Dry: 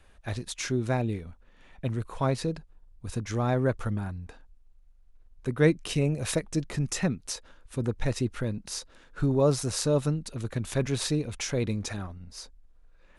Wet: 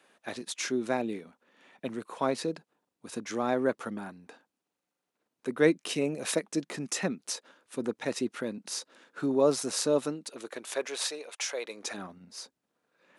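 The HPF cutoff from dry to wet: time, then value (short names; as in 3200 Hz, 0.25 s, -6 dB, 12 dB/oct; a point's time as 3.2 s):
HPF 24 dB/oct
9.92 s 220 Hz
11.09 s 520 Hz
11.65 s 520 Hz
12.07 s 180 Hz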